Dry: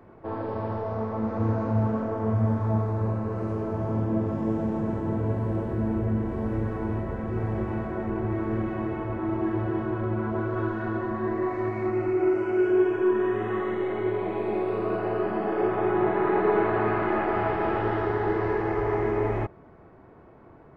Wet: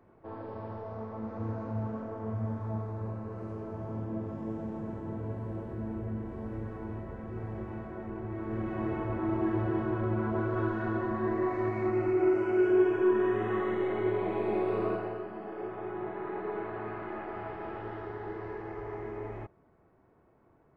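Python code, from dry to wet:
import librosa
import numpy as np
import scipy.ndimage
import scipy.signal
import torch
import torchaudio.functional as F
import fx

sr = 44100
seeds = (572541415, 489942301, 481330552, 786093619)

y = fx.gain(x, sr, db=fx.line((8.3, -10.0), (8.89, -2.5), (14.86, -2.5), (15.27, -13.5)))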